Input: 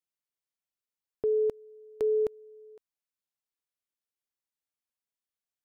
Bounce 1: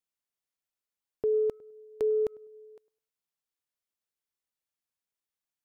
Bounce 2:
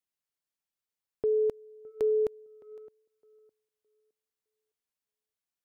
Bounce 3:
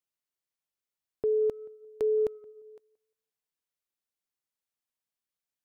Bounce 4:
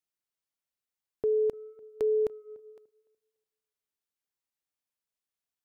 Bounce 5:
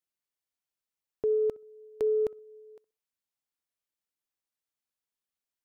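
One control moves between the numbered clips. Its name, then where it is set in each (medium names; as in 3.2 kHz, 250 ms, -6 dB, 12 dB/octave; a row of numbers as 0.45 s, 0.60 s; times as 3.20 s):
tape echo, time: 101 ms, 612 ms, 174 ms, 292 ms, 62 ms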